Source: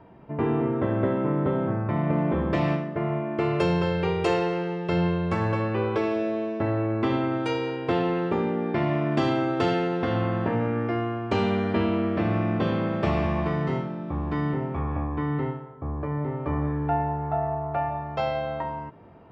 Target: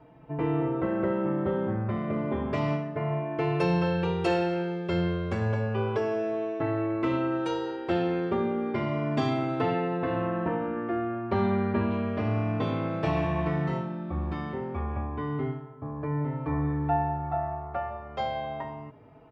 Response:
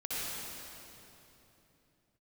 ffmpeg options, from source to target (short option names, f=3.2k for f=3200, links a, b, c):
-filter_complex "[0:a]asettb=1/sr,asplit=3[a][b][c];[a]atrim=end=9.604[d];[b]atrim=start=9.6:end=11.91,asetpts=PTS-STARTPTS,afade=t=in:d=0.004:c=qsin,afade=t=out:st=2.306:d=0.004:c=qsin,lowpass=2.7k[e];[c]atrim=start=11.906[f];[d][e]acrossfade=d=0.004:c1=hsin:c2=qsin[g];[g][f]acrossfade=d=0.004:c1=qsin:c2=hsin,asplit=2[h][i];[i]adelay=4.2,afreqshift=0.31[j];[h][j]amix=inputs=2:normalize=1"